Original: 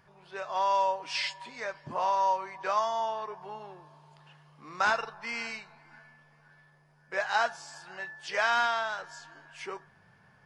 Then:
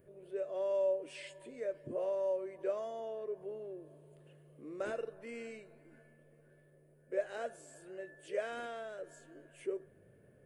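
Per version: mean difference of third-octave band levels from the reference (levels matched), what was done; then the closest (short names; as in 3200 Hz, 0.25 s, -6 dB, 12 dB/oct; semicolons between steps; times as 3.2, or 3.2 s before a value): 7.5 dB: EQ curve 120 Hz 0 dB, 180 Hz -4 dB, 340 Hz +10 dB, 580 Hz +7 dB, 850 Hz -22 dB, 1700 Hz -13 dB, 2900 Hz -12 dB, 5200 Hz -23 dB, 8800 Hz +2 dB; in parallel at -1 dB: limiter -47 dBFS, peak gain reduction 29 dB; on the sum: gain -5.5 dB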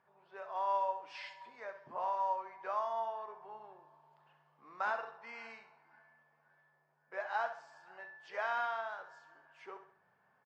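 4.5 dB: band-pass 780 Hz, Q 0.76; feedback echo 66 ms, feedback 42%, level -10.5 dB; gain -7.5 dB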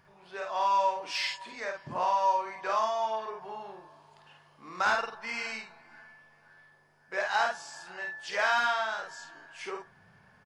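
2.5 dB: in parallel at -10.5 dB: soft clip -32.5 dBFS, distortion -6 dB; on the sum: doubler 50 ms -3.5 dB; gain -2.5 dB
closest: third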